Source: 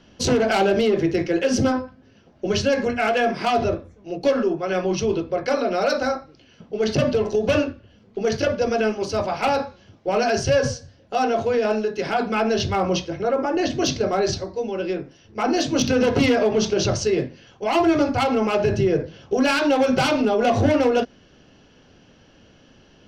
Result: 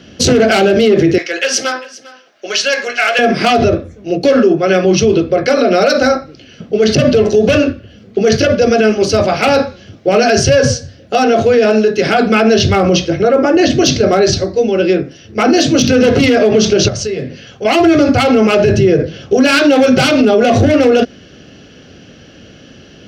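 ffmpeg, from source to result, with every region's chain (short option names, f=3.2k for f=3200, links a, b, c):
-filter_complex "[0:a]asettb=1/sr,asplit=3[a][b][c];[a]atrim=end=1.184[d];[b]atrim=start=1.18:end=3.19,asetpts=PTS-STARTPTS,afade=t=in:d=0.004:c=qsin,afade=t=out:st=2.006:d=0.004:c=qsin,highpass=970,aecho=1:1:399:0.106,atrim=end_sample=88641[e];[c]atrim=start=3.186[f];[d][e]acrossfade=d=0.004:c1=hsin:c2=qsin[g];[g][f]acrossfade=d=0.004:c1=qsin:c2=hsin,asettb=1/sr,asplit=3[h][i][j];[h]atrim=end=16.884[k];[i]atrim=start=16.88:end=17.65,asetpts=PTS-STARTPTS,afade=t=in:d=0.004:c=qsin,afade=t=out:st=0.766:d=0.004:c=qsin,bandreject=f=340:w=6.4,acompressor=threshold=-33dB:ratio=3:attack=3.2:release=140:knee=1:detection=peak[l];[j]atrim=start=17.646[m];[k][l]acrossfade=d=0.004:c1=hsin:c2=qsin[n];[n][m]acrossfade=d=0.004:c1=qsin:c2=hsin,highpass=61,equalizer=f=940:w=3.3:g=-13,alimiter=level_in=15.5dB:limit=-1dB:release=50:level=0:latency=1,volume=-1dB"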